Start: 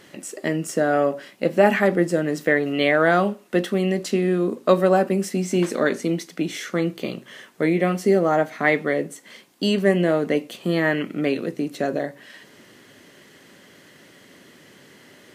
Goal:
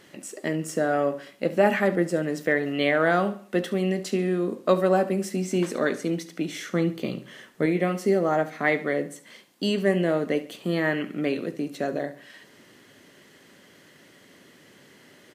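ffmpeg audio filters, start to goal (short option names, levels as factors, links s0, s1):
-filter_complex "[0:a]asettb=1/sr,asplit=3[s0][s1][s2];[s0]atrim=end=6.684[s3];[s1]atrim=start=6.68:end=7.66,asetpts=PTS-STARTPTS,afade=t=in:d=0.004:c=qsin,afade=t=out:st=0.976:d=0.004:c=qsin,lowshelf=f=220:g=8[s4];[s2]atrim=start=7.656[s5];[s3][s4]acrossfade=d=0.004:c1=hsin:c2=qsin[s6];[s6][s5]acrossfade=d=0.004:c1=qsin:c2=hsin,aecho=1:1:70|140|210|280:0.158|0.0634|0.0254|0.0101,volume=0.631"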